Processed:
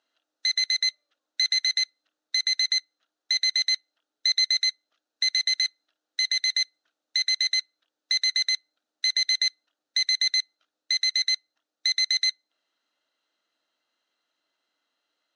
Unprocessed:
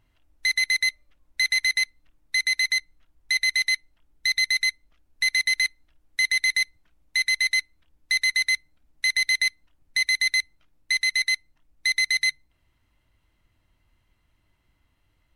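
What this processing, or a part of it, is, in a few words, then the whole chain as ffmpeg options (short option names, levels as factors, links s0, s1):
phone speaker on a table: -af "highpass=f=350:w=0.5412,highpass=f=350:w=1.3066,equalizer=f=370:t=q:w=4:g=-7,equalizer=f=990:t=q:w=4:g=-8,equalizer=f=1400:t=q:w=4:g=4,equalizer=f=2200:t=q:w=4:g=-10,equalizer=f=4000:t=q:w=4:g=7,equalizer=f=6300:t=q:w=4:g=4,lowpass=f=7200:w=0.5412,lowpass=f=7200:w=1.3066,volume=0.75"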